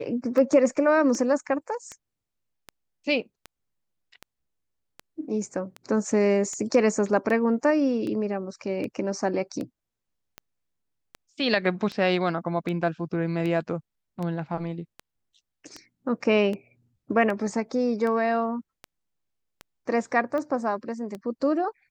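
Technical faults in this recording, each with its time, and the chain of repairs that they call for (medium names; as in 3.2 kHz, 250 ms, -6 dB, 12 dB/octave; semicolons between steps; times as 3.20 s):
tick 78 rpm -21 dBFS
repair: de-click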